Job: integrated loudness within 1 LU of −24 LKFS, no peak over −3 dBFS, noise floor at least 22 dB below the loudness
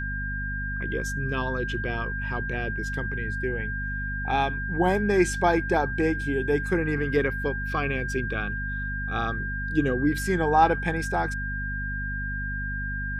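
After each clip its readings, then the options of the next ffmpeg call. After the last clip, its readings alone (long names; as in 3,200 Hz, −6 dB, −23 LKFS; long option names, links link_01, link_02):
mains hum 50 Hz; hum harmonics up to 250 Hz; level of the hum −30 dBFS; interfering tone 1,600 Hz; level of the tone −31 dBFS; integrated loudness −27.0 LKFS; sample peak −7.5 dBFS; target loudness −24.0 LKFS
→ -af "bandreject=frequency=50:width_type=h:width=4,bandreject=frequency=100:width_type=h:width=4,bandreject=frequency=150:width_type=h:width=4,bandreject=frequency=200:width_type=h:width=4,bandreject=frequency=250:width_type=h:width=4"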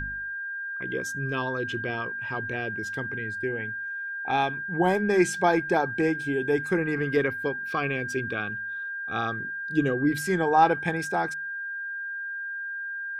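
mains hum none found; interfering tone 1,600 Hz; level of the tone −31 dBFS
→ -af "bandreject=frequency=1600:width=30"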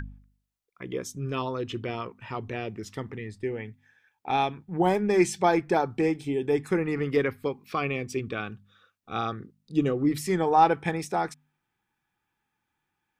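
interfering tone none found; integrated loudness −28.0 LKFS; sample peak −8.0 dBFS; target loudness −24.0 LKFS
→ -af "volume=4dB"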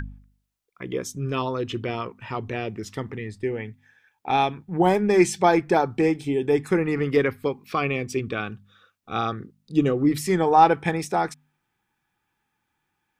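integrated loudness −24.0 LKFS; sample peak −4.0 dBFS; background noise floor −77 dBFS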